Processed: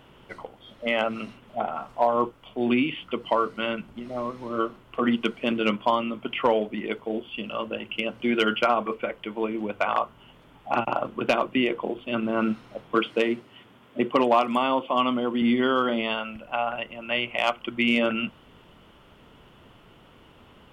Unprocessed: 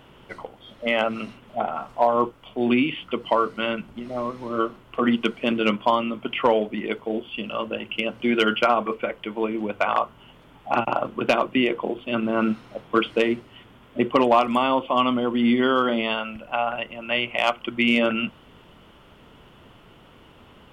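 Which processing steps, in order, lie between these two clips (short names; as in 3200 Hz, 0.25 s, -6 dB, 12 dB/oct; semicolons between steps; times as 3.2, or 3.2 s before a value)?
12.95–15.42 HPF 130 Hz 12 dB/oct; gain -2.5 dB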